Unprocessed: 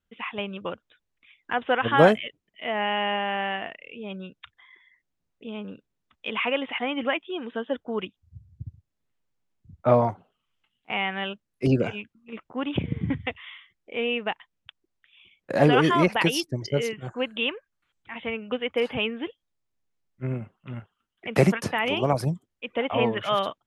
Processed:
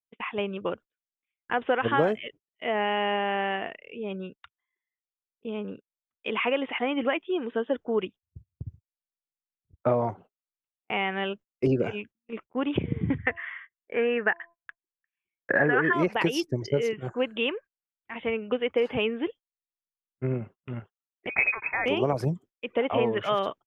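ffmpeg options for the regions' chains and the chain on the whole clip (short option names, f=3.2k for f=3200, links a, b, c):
-filter_complex "[0:a]asettb=1/sr,asplit=3[a][b][c];[a]atrim=end=13.184[d];[b]atrim=start=13.18:end=15.93,asetpts=PTS-STARTPTS,afade=t=in:d=0.004:c=qsin,afade=t=out:st=2.746:d=0.004:c=qsin,lowpass=f=1.7k:t=q:w=8.3,bandreject=f=340.2:t=h:w=4,bandreject=f=680.4:t=h:w=4,bandreject=f=1.0206k:t=h:w=4[e];[c]atrim=start=15.926[f];[d][e]acrossfade=d=0.004:c1=hsin:c2=qsin[g];[g][f]acrossfade=d=0.004:c1=qsin:c2=hsin,asettb=1/sr,asplit=3[h][i][j];[h]atrim=end=21.294[k];[i]atrim=start=21.29:end=21.86,asetpts=PTS-STARTPTS,afade=t=in:d=0.004:c=qsin,afade=t=out:st=0.566:d=0.004:c=qsin,lowpass=f=2.3k:t=q:w=0.5098,lowpass=f=2.3k:t=q:w=0.6013,lowpass=f=2.3k:t=q:w=0.9,lowpass=f=2.3k:t=q:w=2.563,afreqshift=-2700,equalizer=f=450:t=o:w=2.6:g=-5[l];[j]atrim=start=21.856[m];[k][l]acrossfade=d=0.004:c1=hsin:c2=qsin[n];[n][m]acrossfade=d=0.004:c1=qsin:c2=hsin,agate=range=-32dB:threshold=-44dB:ratio=16:detection=peak,equalizer=f=400:t=o:w=0.67:g=6,equalizer=f=4k:t=o:w=0.67:g=-6,equalizer=f=10k:t=o:w=0.67:g=-10,acompressor=threshold=-20dB:ratio=6"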